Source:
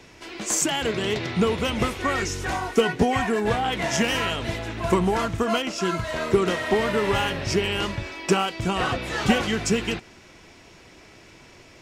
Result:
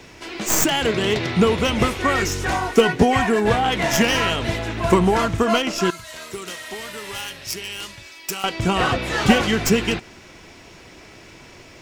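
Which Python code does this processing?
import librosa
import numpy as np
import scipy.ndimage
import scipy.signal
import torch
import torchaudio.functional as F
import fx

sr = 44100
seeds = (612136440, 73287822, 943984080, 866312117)

y = fx.tracing_dist(x, sr, depth_ms=0.086)
y = fx.pre_emphasis(y, sr, coefficient=0.9, at=(5.9, 8.44))
y = fx.quant_dither(y, sr, seeds[0], bits=12, dither='none')
y = y * librosa.db_to_amplitude(5.0)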